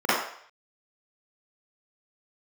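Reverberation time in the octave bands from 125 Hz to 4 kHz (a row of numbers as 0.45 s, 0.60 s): 0.35 s, 0.40 s, 0.60 s, 0.60 s, 0.60 s, 0.60 s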